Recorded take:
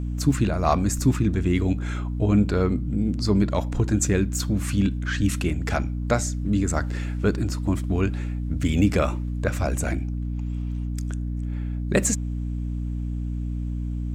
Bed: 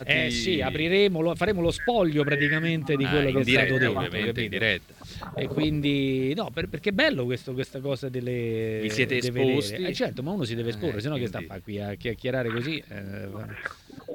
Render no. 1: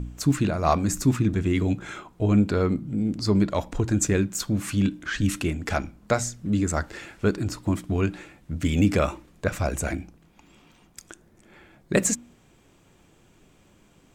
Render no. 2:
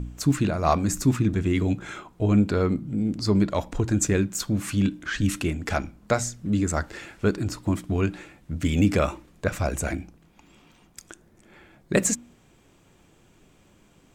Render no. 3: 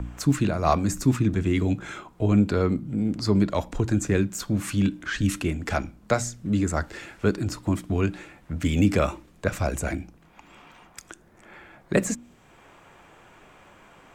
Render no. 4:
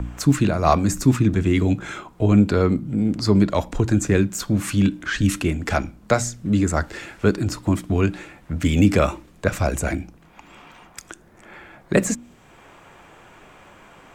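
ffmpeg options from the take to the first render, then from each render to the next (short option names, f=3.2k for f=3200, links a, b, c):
-af "bandreject=f=60:t=h:w=4,bandreject=f=120:t=h:w=4,bandreject=f=180:t=h:w=4,bandreject=f=240:t=h:w=4,bandreject=f=300:t=h:w=4"
-af anull
-filter_complex "[0:a]acrossover=split=190|600|2300[a][b][c][d];[c]acompressor=mode=upward:threshold=-40dB:ratio=2.5[e];[d]alimiter=limit=-22dB:level=0:latency=1:release=133[f];[a][b][e][f]amix=inputs=4:normalize=0"
-af "volume=4.5dB,alimiter=limit=-3dB:level=0:latency=1"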